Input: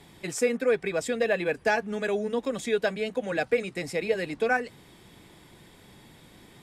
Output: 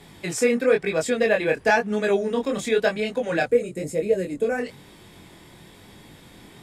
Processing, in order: time-frequency box 3.45–4.58 s, 650–6300 Hz -12 dB; chorus 1 Hz, delay 19 ms, depth 6.3 ms; trim +8 dB

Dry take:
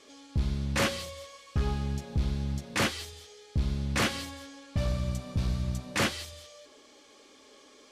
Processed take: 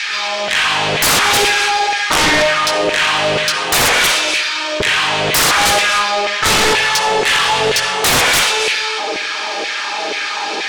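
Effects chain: LFO high-pass saw down 2.8 Hz 650–2800 Hz; on a send at -10.5 dB: reverberation RT60 0.50 s, pre-delay 38 ms; on the sum: compression 16:1, threshold -32 dBFS, peak gain reduction 12 dB; speed mistake 45 rpm record played at 33 rpm; in parallel at -1.5 dB: level held to a coarse grid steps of 20 dB; on the sum: sine folder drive 20 dB, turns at -16.5 dBFS; trim +7.5 dB

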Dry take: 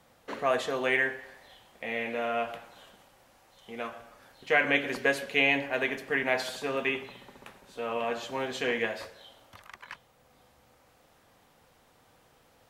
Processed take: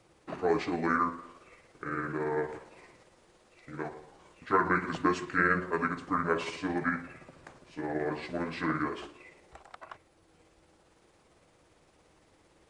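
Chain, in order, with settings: rotating-head pitch shifter -7.5 st

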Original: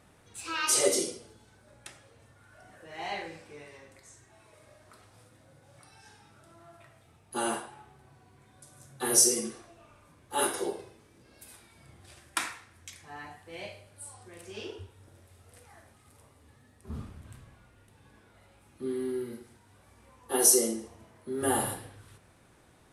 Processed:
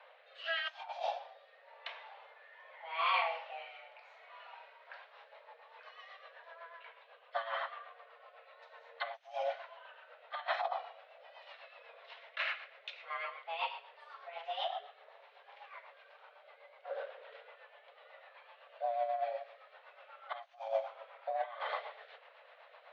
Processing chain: single-diode clipper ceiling -23 dBFS; compressor with a negative ratio -35 dBFS, ratio -0.5; mistuned SSB +330 Hz 200–3400 Hz; rotary cabinet horn 0.85 Hz, later 8 Hz, at 4.58 s; trim +3 dB

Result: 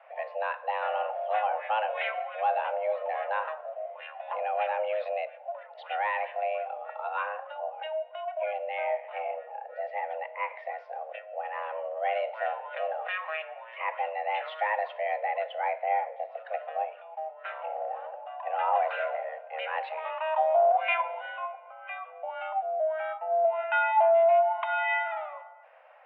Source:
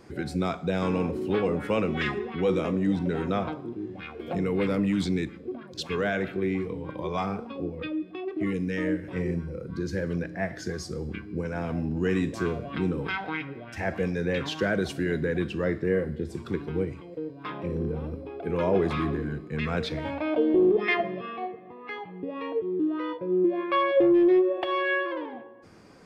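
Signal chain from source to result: mistuned SSB +320 Hz 230–2600 Hz; trim -1.5 dB

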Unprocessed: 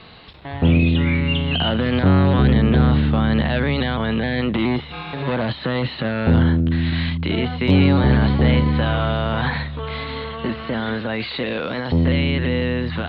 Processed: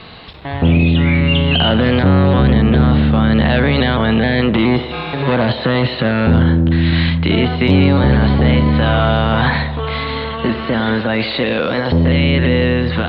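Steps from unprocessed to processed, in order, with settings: in parallel at -3 dB: compressor with a negative ratio -20 dBFS; on the sum: band-passed feedback delay 91 ms, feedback 80%, band-pass 580 Hz, level -11 dB; trim +1.5 dB

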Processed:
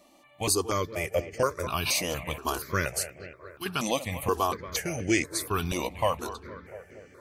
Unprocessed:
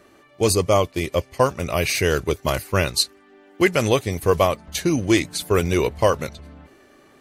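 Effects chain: 3.03–3.66 s: pre-emphasis filter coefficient 0.8; bucket-brigade echo 232 ms, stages 4096, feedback 66%, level -15.5 dB; in parallel at +2 dB: peak limiter -12 dBFS, peak gain reduction 7.5 dB; on the sum: bass shelf 310 Hz -7.5 dB; stepped phaser 4.2 Hz 410–3800 Hz; trim -7.5 dB

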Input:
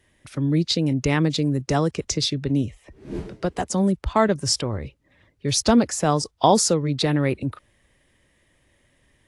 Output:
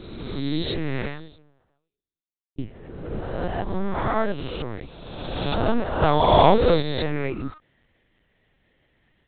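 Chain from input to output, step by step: reverse spectral sustain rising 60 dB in 1.67 s; 0.99–2.58 s: fade out exponential; 3.11–3.85 s: bass shelf 79 Hz +9.5 dB; 6.02–6.81 s: waveshaping leveller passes 2; LPC vocoder at 8 kHz pitch kept; trim -6 dB

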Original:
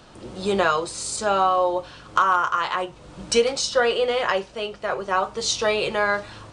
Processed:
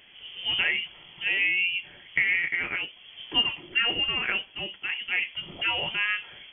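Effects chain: frequency inversion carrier 3.3 kHz; trim -5.5 dB

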